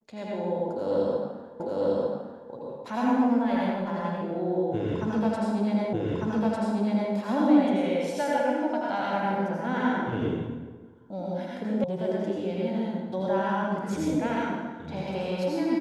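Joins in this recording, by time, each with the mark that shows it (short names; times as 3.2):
1.6 repeat of the last 0.9 s
5.93 repeat of the last 1.2 s
11.84 sound cut off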